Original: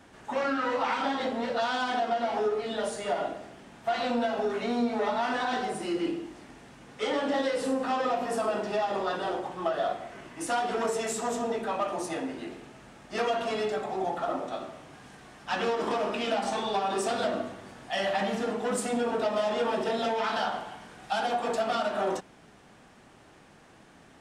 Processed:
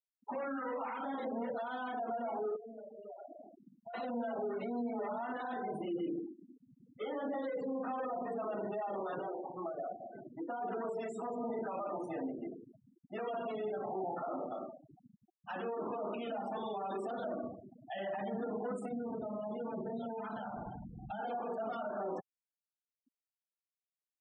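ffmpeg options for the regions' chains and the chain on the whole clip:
-filter_complex "[0:a]asettb=1/sr,asplit=3[a][b][c];[a]atrim=end=2.564[d];[b]atrim=start=2.56:end=3.94,asetpts=PTS-STARTPTS,afade=t=in:d=0.004:c=qsin,afade=t=out:st=1.376:d=0.004:c=qsin,lowpass=f=2.4k:p=1,acompressor=threshold=-41dB:ratio=8:attack=3.2:release=140:knee=1:detection=peak[e];[c]atrim=start=3.936[f];[d][e]acrossfade=d=0.004:c1=hsin:c2=qsin[g];[g][f]acrossfade=d=0.004:c1=qsin:c2=hsin,asettb=1/sr,asplit=3[h][i][j];[h]atrim=end=9.184[k];[i]atrim=start=9.18:end=10.61,asetpts=PTS-STARTPTS,afade=t=in:d=0.004:c=qsin,afade=t=out:st=1.426:d=0.004:c=qsin,lowshelf=f=460:g=6.5,acrossover=split=300|2900[l][m][n];[l]acompressor=threshold=-51dB:ratio=4[o];[m]acompressor=threshold=-35dB:ratio=4[p];[n]acompressor=threshold=-56dB:ratio=4[q];[o][p][q]amix=inputs=3:normalize=0,asoftclip=type=hard:threshold=-29.5dB[r];[j]atrim=start=10.606[s];[k][r]acrossfade=d=0.004:c1=hsin:c2=qsin[t];[t][s]acrossfade=d=0.004:c1=qsin:c2=hsin,asettb=1/sr,asplit=3[u][v][w];[u]atrim=end=11.244[x];[v]atrim=start=11.24:end=11.68,asetpts=PTS-STARTPTS,afade=t=in:d=0.004:c=qsin,afade=t=out:st=0.436:d=0.004:c=qsin,highshelf=f=10k:g=-3.5,asplit=2[y][z];[z]adelay=36,volume=-5dB[aa];[y][aa]amix=inputs=2:normalize=0,atrim=end_sample=19404[ab];[w]atrim=start=11.676[ac];[x][ab]acrossfade=d=0.004:c1=hsin:c2=qsin[ad];[ad][ac]acrossfade=d=0.004:c1=qsin:c2=hsin,asettb=1/sr,asplit=3[ae][af][ag];[ae]atrim=end=18.884[ah];[af]atrim=start=18.88:end=21.19,asetpts=PTS-STARTPTS,afade=t=in:d=0.004:c=qsin,afade=t=out:st=2.306:d=0.004:c=qsin,bass=f=250:g=13,treble=f=4k:g=3,acompressor=threshold=-33dB:ratio=6:attack=3.2:release=140:knee=1:detection=peak[ai];[ag]atrim=start=21.186[aj];[ah][ai]acrossfade=d=0.004:c1=hsin:c2=qsin[ak];[ak][aj]acrossfade=d=0.004:c1=qsin:c2=hsin,alimiter=level_in=2.5dB:limit=-24dB:level=0:latency=1:release=34,volume=-2.5dB,afftfilt=real='re*gte(hypot(re,im),0.02)':imag='im*gte(hypot(re,im),0.02)':win_size=1024:overlap=0.75,lowpass=f=1.3k:p=1,volume=-3dB"

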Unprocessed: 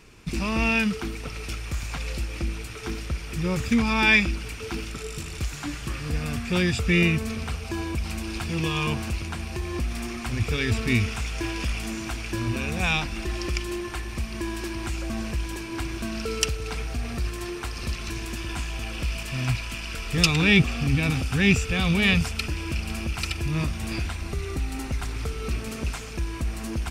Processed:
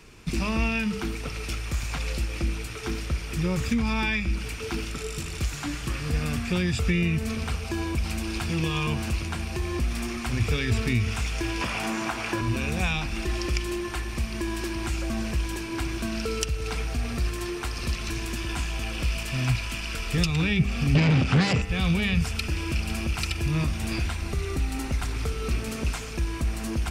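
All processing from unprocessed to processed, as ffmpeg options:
-filter_complex "[0:a]asettb=1/sr,asplit=3[a][b][c];[a]atrim=end=11.614[d];[b]atrim=start=11.61:end=12.41,asetpts=PTS-STARTPTS,afade=t=in:d=0.004:c=qsin,afade=t=out:st=0.796:d=0.004:c=qsin,highpass=130,equalizer=f=910:w=0.54:g=11.5,asplit=2[e][f];[f]adelay=17,volume=-11.5dB[g];[e][g]amix=inputs=2:normalize=0,atrim=end_sample=35280[h];[c]atrim=start=12.406[i];[d][h]acrossfade=d=0.004:c1=hsin:c2=qsin[j];[j][i]acrossfade=d=0.004:c1=qsin:c2=hsin,asettb=1/sr,asplit=3[k][l][m];[k]atrim=end=20.954[n];[l]atrim=start=20.95:end=21.62,asetpts=PTS-STARTPTS,afade=t=in:d=0.004:c=qsin,afade=t=out:st=0.666:d=0.004:c=qsin,acrossover=split=3700[o][p];[p]acompressor=threshold=-49dB:ratio=4:attack=1:release=60[q];[o][q]amix=inputs=2:normalize=0,aeval=exprs='0.422*sin(PI/2*4.47*val(0)/0.422)':c=same,highpass=180,lowpass=7k[r];[m]atrim=start=21.616[s];[n][r]acrossfade=d=0.004:c1=hsin:c2=qsin[t];[t][s]acrossfade=d=0.004:c1=qsin:c2=hsin,bandreject=f=100.2:t=h:w=4,bandreject=f=200.4:t=h:w=4,bandreject=f=300.6:t=h:w=4,bandreject=f=400.8:t=h:w=4,bandreject=f=501:t=h:w=4,bandreject=f=601.2:t=h:w=4,bandreject=f=701.4:t=h:w=4,bandreject=f=801.6:t=h:w=4,bandreject=f=901.8:t=h:w=4,bandreject=f=1.002k:t=h:w=4,bandreject=f=1.1022k:t=h:w=4,bandreject=f=1.2024k:t=h:w=4,bandreject=f=1.3026k:t=h:w=4,bandreject=f=1.4028k:t=h:w=4,bandreject=f=1.503k:t=h:w=4,bandreject=f=1.6032k:t=h:w=4,bandreject=f=1.7034k:t=h:w=4,bandreject=f=1.8036k:t=h:w=4,bandreject=f=1.9038k:t=h:w=4,bandreject=f=2.004k:t=h:w=4,bandreject=f=2.1042k:t=h:w=4,bandreject=f=2.2044k:t=h:w=4,bandreject=f=2.3046k:t=h:w=4,bandreject=f=2.4048k:t=h:w=4,bandreject=f=2.505k:t=h:w=4,bandreject=f=2.6052k:t=h:w=4,bandreject=f=2.7054k:t=h:w=4,bandreject=f=2.8056k:t=h:w=4,bandreject=f=2.9058k:t=h:w=4,acrossover=split=160[u][v];[v]acompressor=threshold=-27dB:ratio=6[w];[u][w]amix=inputs=2:normalize=0,volume=1.5dB"

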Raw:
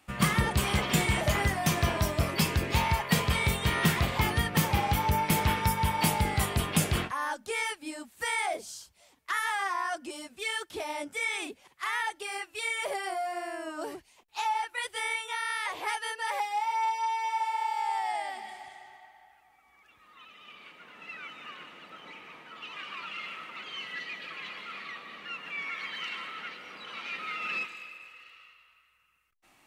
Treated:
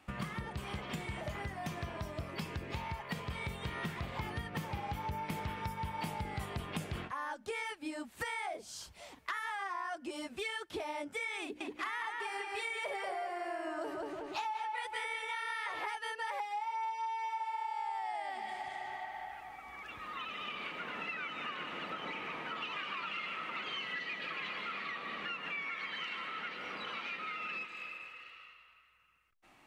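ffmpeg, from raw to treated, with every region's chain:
-filter_complex "[0:a]asettb=1/sr,asplit=3[a][b][c];[a]atrim=end=11.424[d];[b]atrim=start=11.42:end=15.86,asetpts=PTS-STARTPTS,afade=t=in:d=0.004:c=qsin,afade=t=out:st=4.436:d=0.004:c=qsin,bandreject=f=60:t=h:w=6,bandreject=f=120:t=h:w=6,bandreject=f=180:t=h:w=6,bandreject=f=240:t=h:w=6,bandreject=f=300:t=h:w=6,bandreject=f=360:t=h:w=6,asplit=2[e][f];[f]adelay=184,lowpass=f=4.4k:p=1,volume=-3.5dB,asplit=2[g][h];[h]adelay=184,lowpass=f=4.4k:p=1,volume=0.36,asplit=2[i][j];[j]adelay=184,lowpass=f=4.4k:p=1,volume=0.36,asplit=2[k][l];[l]adelay=184,lowpass=f=4.4k:p=1,volume=0.36,asplit=2[m][n];[n]adelay=184,lowpass=f=4.4k:p=1,volume=0.36[o];[e][g][i][k][m][o]amix=inputs=6:normalize=0,atrim=end_sample=195804[p];[c]atrim=start=15.856[q];[d][p]acrossfade=d=0.004:c1=hsin:c2=qsin[r];[r][q]acrossfade=d=0.004:c1=qsin:c2=hsin,dynaudnorm=f=270:g=31:m=14dB,highshelf=f=4.7k:g=-11,acompressor=threshold=-40dB:ratio=6,volume=1.5dB"

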